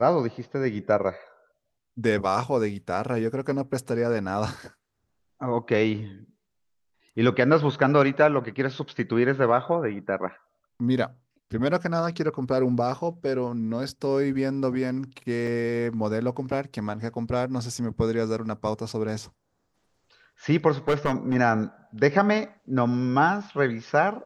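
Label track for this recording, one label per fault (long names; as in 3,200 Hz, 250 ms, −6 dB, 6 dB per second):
15.470000	15.470000	drop-out 3.5 ms
20.880000	21.350000	clipping −17.5 dBFS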